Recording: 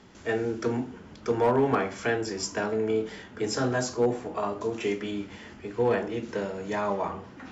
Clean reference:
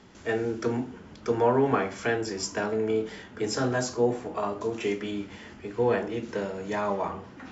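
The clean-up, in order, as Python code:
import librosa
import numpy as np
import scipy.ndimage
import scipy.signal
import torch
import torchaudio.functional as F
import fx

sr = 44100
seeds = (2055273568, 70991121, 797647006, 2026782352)

y = fx.fix_declip(x, sr, threshold_db=-16.0)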